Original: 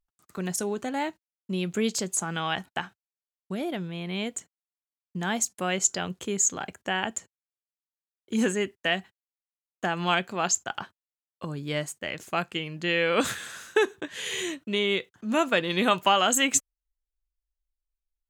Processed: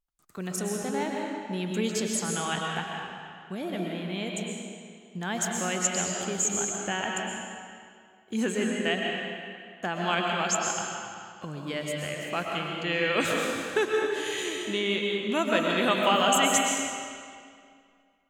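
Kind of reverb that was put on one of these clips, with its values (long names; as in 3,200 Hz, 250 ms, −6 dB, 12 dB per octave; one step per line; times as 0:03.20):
comb and all-pass reverb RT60 2.2 s, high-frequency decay 0.85×, pre-delay 85 ms, DRR −1 dB
level −3.5 dB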